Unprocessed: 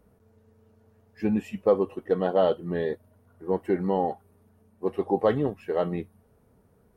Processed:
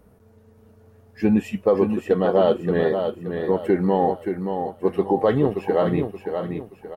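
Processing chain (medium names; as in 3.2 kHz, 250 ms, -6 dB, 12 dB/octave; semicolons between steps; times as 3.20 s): peak limiter -15.5 dBFS, peak gain reduction 6 dB; feedback delay 576 ms, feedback 35%, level -6.5 dB; trim +7 dB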